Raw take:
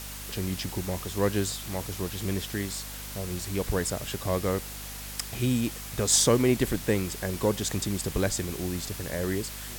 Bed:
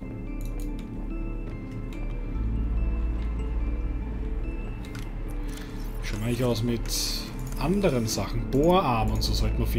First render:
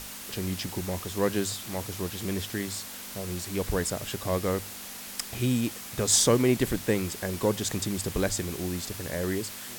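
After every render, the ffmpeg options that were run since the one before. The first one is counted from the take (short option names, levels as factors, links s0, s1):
-af "bandreject=f=50:t=h:w=6,bandreject=f=100:t=h:w=6,bandreject=f=150:t=h:w=6"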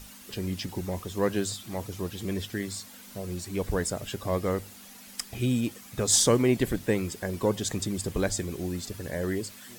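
-af "afftdn=nr=10:nf=-41"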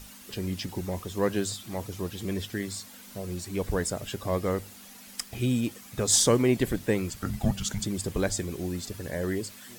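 -filter_complex "[0:a]asettb=1/sr,asplit=3[s0][s1][s2];[s0]atrim=end=5.234[s3];[s1]atrim=start=5.23:end=5.68,asetpts=PTS-STARTPTS,afade=t=in:d=0.004:c=qsin,afade=t=out:st=0.446:d=0.004:c=qsin,aeval=exprs='val(0)*gte(abs(val(0)),0.00398)':c=same[s4];[s2]atrim=start=5.676[s5];[s3][s4]acrossfade=d=0.004:c1=hsin:c2=qsin[s6];[s6][s5]acrossfade=d=0.004:c1=qsin:c2=hsin,asettb=1/sr,asplit=3[s7][s8][s9];[s7]atrim=end=7.104[s10];[s8]atrim=start=7.1:end=7.84,asetpts=PTS-STARTPTS,afade=t=in:d=0.004:c=qsin,afade=t=out:st=0.736:d=0.004:c=qsin,afreqshift=-300[s11];[s9]atrim=start=7.836[s12];[s10][s11]acrossfade=d=0.004:c1=hsin:c2=qsin[s13];[s13][s12]acrossfade=d=0.004:c1=qsin:c2=hsin"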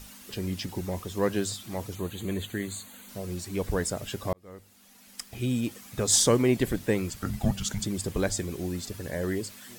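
-filter_complex "[0:a]asettb=1/sr,asplit=3[s0][s1][s2];[s0]atrim=end=1.954[s3];[s1]atrim=start=1.95:end=3.09,asetpts=PTS-STARTPTS,afade=t=in:d=0.004:c=qsin,afade=t=out:st=1.136:d=0.004:c=qsin,asuperstop=centerf=5300:order=8:qfactor=3.5[s4];[s2]atrim=start=3.086[s5];[s3][s4]acrossfade=d=0.004:c1=hsin:c2=qsin[s6];[s6][s5]acrossfade=d=0.004:c1=qsin:c2=hsin,asplit=2[s7][s8];[s7]atrim=end=4.33,asetpts=PTS-STARTPTS,afade=t=out:st=4.326:d=0.004:c=hsin[s9];[s8]atrim=start=4.33,asetpts=PTS-STARTPTS,afade=t=in:d=1.46[s10];[s9][s10]concat=n=2:v=0:a=1"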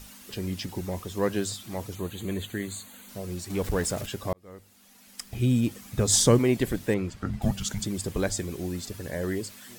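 -filter_complex "[0:a]asettb=1/sr,asplit=3[s0][s1][s2];[s0]atrim=end=3.504[s3];[s1]atrim=start=3.5:end=4.06,asetpts=PTS-STARTPTS,afade=t=in:d=0.004:c=qsin,afade=t=out:st=0.556:d=0.004:c=qsin,aeval=exprs='val(0)+0.5*0.0168*sgn(val(0))':c=same[s4];[s2]atrim=start=4.056[s5];[s3][s4]acrossfade=d=0.004:c1=hsin:c2=qsin[s6];[s6][s5]acrossfade=d=0.004:c1=qsin:c2=hsin,asettb=1/sr,asplit=3[s7][s8][s9];[s7]atrim=end=5.234[s10];[s8]atrim=start=5.23:end=6.39,asetpts=PTS-STARTPTS,afade=t=in:d=0.004:c=qsin,afade=t=out:st=1.156:d=0.004:c=qsin,lowshelf=f=220:g=9[s11];[s9]atrim=start=6.386[s12];[s10][s11]acrossfade=d=0.004:c1=hsin:c2=qsin[s13];[s13][s12]acrossfade=d=0.004:c1=qsin:c2=hsin,asettb=1/sr,asplit=3[s14][s15][s16];[s14]atrim=end=6.944[s17];[s15]atrim=start=6.94:end=7.42,asetpts=PTS-STARTPTS,afade=t=in:d=0.004:c=qsin,afade=t=out:st=0.476:d=0.004:c=qsin,aemphasis=mode=reproduction:type=75fm[s18];[s16]atrim=start=7.416[s19];[s17][s18]acrossfade=d=0.004:c1=hsin:c2=qsin[s20];[s20][s19]acrossfade=d=0.004:c1=qsin:c2=hsin"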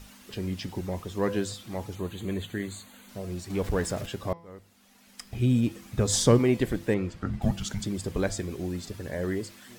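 -af "highshelf=f=6100:g=-9,bandreject=f=168.4:t=h:w=4,bandreject=f=336.8:t=h:w=4,bandreject=f=505.2:t=h:w=4,bandreject=f=673.6:t=h:w=4,bandreject=f=842:t=h:w=4,bandreject=f=1010.4:t=h:w=4,bandreject=f=1178.8:t=h:w=4,bandreject=f=1347.2:t=h:w=4,bandreject=f=1515.6:t=h:w=4,bandreject=f=1684:t=h:w=4,bandreject=f=1852.4:t=h:w=4,bandreject=f=2020.8:t=h:w=4,bandreject=f=2189.2:t=h:w=4,bandreject=f=2357.6:t=h:w=4,bandreject=f=2526:t=h:w=4,bandreject=f=2694.4:t=h:w=4,bandreject=f=2862.8:t=h:w=4,bandreject=f=3031.2:t=h:w=4,bandreject=f=3199.6:t=h:w=4,bandreject=f=3368:t=h:w=4,bandreject=f=3536.4:t=h:w=4,bandreject=f=3704.8:t=h:w=4,bandreject=f=3873.2:t=h:w=4,bandreject=f=4041.6:t=h:w=4,bandreject=f=4210:t=h:w=4,bandreject=f=4378.4:t=h:w=4,bandreject=f=4546.8:t=h:w=4,bandreject=f=4715.2:t=h:w=4,bandreject=f=4883.6:t=h:w=4,bandreject=f=5052:t=h:w=4,bandreject=f=5220.4:t=h:w=4,bandreject=f=5388.8:t=h:w=4,bandreject=f=5557.2:t=h:w=4,bandreject=f=5725.6:t=h:w=4"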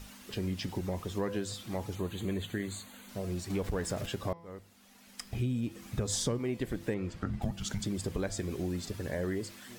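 -af "acompressor=threshold=0.0316:ratio=5"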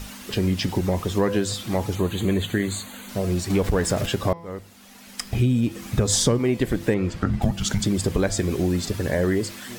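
-af "volume=3.98"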